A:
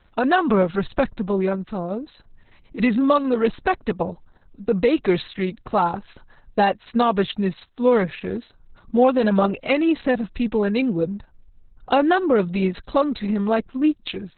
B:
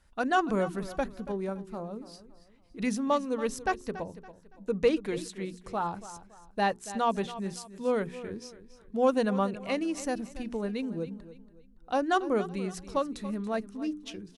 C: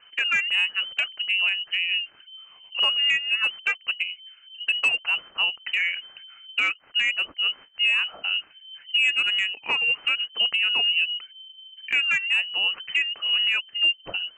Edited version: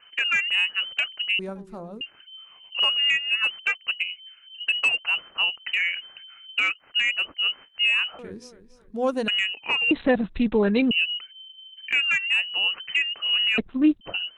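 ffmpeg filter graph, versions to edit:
-filter_complex "[1:a]asplit=2[s0][s1];[0:a]asplit=2[s2][s3];[2:a]asplit=5[s4][s5][s6][s7][s8];[s4]atrim=end=1.392[s9];[s0]atrim=start=1.388:end=2.012[s10];[s5]atrim=start=2.008:end=8.192[s11];[s1]atrim=start=8.188:end=9.282[s12];[s6]atrim=start=9.278:end=9.912[s13];[s2]atrim=start=9.908:end=10.912[s14];[s7]atrim=start=10.908:end=13.582[s15];[s3]atrim=start=13.578:end=14.012[s16];[s8]atrim=start=14.008[s17];[s9][s10]acrossfade=d=0.004:c1=hsin:c2=hsin[s18];[s18][s11]acrossfade=d=0.004:c1=hsin:c2=hsin[s19];[s19][s12]acrossfade=d=0.004:c1=hsin:c2=hsin[s20];[s20][s13]acrossfade=d=0.004:c1=hsin:c2=hsin[s21];[s21][s14]acrossfade=d=0.004:c1=hsin:c2=hsin[s22];[s22][s15]acrossfade=d=0.004:c1=hsin:c2=hsin[s23];[s23][s16]acrossfade=d=0.004:c1=hsin:c2=hsin[s24];[s24][s17]acrossfade=d=0.004:c1=hsin:c2=hsin"

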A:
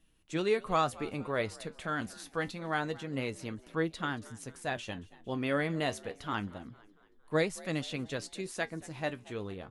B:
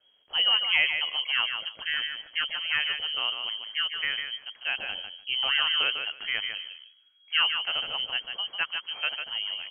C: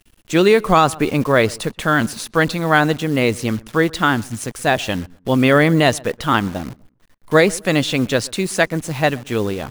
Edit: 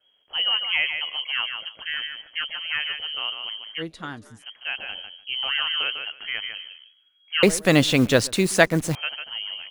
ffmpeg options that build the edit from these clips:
-filter_complex "[1:a]asplit=3[s0][s1][s2];[s0]atrim=end=3.83[s3];[0:a]atrim=start=3.77:end=4.44[s4];[s1]atrim=start=4.38:end=7.432[s5];[2:a]atrim=start=7.428:end=8.952[s6];[s2]atrim=start=8.948[s7];[s3][s4]acrossfade=d=0.06:c1=tri:c2=tri[s8];[s8][s5]acrossfade=d=0.06:c1=tri:c2=tri[s9];[s9][s6]acrossfade=d=0.004:c1=hsin:c2=hsin[s10];[s10][s7]acrossfade=d=0.004:c1=hsin:c2=hsin"

